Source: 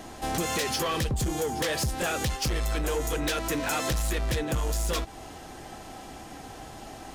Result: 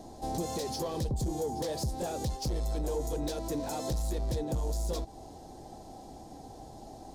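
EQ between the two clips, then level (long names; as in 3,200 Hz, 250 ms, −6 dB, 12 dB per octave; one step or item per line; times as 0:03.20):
flat-topped bell 1,900 Hz −15.5 dB
high-shelf EQ 4,800 Hz −8 dB
−3.5 dB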